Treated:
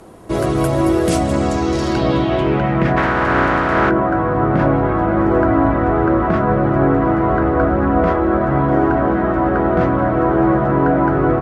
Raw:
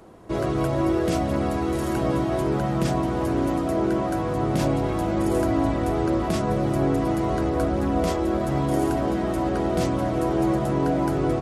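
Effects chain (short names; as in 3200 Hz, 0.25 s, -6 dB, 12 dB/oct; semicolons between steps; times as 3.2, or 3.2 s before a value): 2.96–3.89 spectral contrast lowered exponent 0.42; low-pass sweep 11000 Hz -> 1500 Hz, 1.02–3.13; gain +7 dB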